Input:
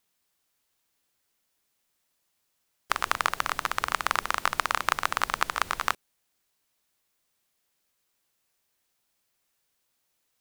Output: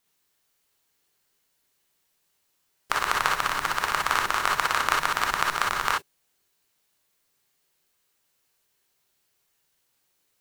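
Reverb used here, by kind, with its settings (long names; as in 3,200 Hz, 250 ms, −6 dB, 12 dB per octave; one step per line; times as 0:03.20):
reverb whose tail is shaped and stops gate 80 ms rising, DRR −1 dB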